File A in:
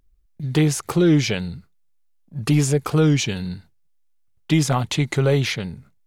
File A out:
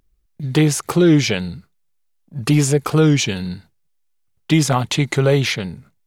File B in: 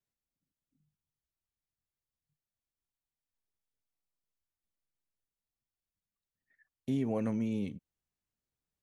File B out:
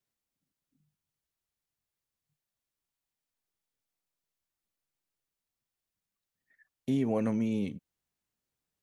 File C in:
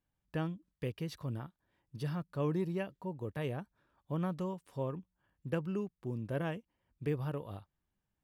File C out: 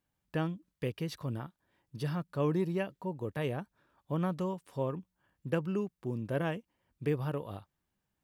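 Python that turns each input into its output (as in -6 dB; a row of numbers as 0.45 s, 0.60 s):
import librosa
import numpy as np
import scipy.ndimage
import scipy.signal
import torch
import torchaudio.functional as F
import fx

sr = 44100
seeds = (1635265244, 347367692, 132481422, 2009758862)

y = fx.low_shelf(x, sr, hz=77.0, db=-8.5)
y = y * 10.0 ** (4.0 / 20.0)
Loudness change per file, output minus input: +3.0 LU, +3.0 LU, +3.0 LU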